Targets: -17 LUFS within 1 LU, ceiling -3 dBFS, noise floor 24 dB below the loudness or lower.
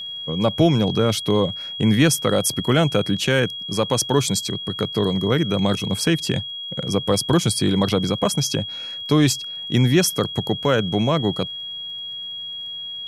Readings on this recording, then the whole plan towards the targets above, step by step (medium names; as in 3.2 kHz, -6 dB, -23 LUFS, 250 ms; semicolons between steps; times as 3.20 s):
tick rate 31 per s; steady tone 3.3 kHz; tone level -29 dBFS; loudness -21.0 LUFS; peak level -4.5 dBFS; loudness target -17.0 LUFS
-> de-click; band-stop 3.3 kHz, Q 30; trim +4 dB; peak limiter -3 dBFS